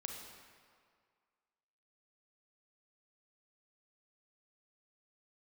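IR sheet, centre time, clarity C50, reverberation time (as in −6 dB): 67 ms, 2.5 dB, 2.0 s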